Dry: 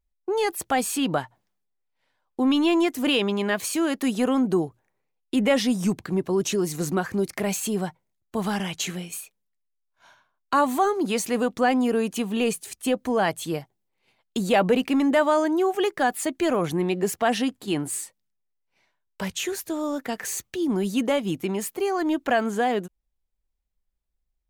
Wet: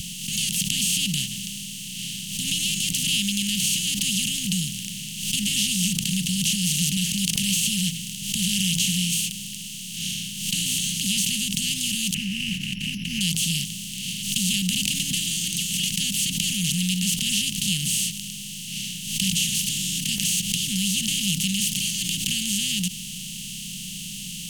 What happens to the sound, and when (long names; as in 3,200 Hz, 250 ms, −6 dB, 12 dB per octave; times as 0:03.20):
0:12.14–0:13.21: bad sample-rate conversion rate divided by 8×, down none, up filtered
whole clip: compressor on every frequency bin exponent 0.2; Chebyshev band-stop filter 180–2,900 Hz, order 4; background raised ahead of every attack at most 61 dB per second; level −1 dB